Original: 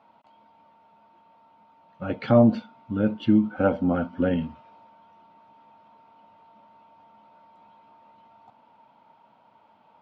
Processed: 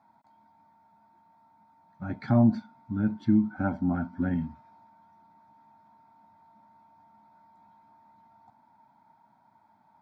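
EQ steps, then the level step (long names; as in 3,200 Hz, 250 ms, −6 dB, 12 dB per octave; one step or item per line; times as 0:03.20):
parametric band 1,200 Hz −11 dB 0.41 octaves
phaser with its sweep stopped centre 1,200 Hz, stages 4
0.0 dB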